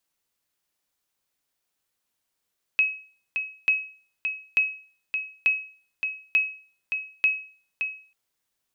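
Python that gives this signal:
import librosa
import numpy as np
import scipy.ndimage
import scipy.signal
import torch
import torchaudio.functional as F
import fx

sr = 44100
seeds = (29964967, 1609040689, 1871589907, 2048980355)

y = fx.sonar_ping(sr, hz=2560.0, decay_s=0.43, every_s=0.89, pings=6, echo_s=0.57, echo_db=-7.0, level_db=-13.5)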